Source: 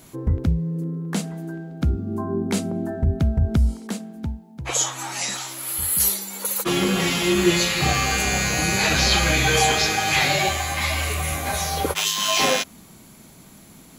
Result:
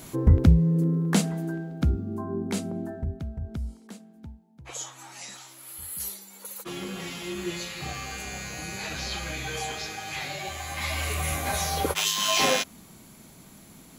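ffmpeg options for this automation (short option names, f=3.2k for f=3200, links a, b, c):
-af "volume=15.5dB,afade=t=out:st=0.97:d=1.2:silence=0.316228,afade=t=out:st=2.79:d=0.43:silence=0.375837,afade=t=in:st=10.43:d=0.85:silence=0.266073"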